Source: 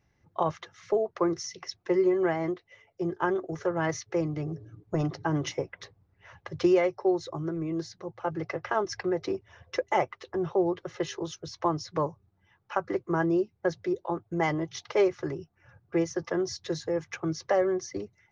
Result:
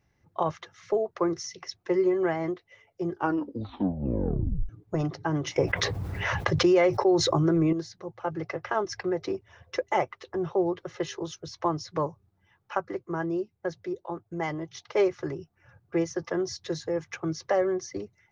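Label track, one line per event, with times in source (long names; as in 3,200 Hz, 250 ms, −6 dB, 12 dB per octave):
3.110000	3.110000	tape stop 1.58 s
5.560000	7.730000	envelope flattener amount 70%
12.810000	14.950000	clip gain −4 dB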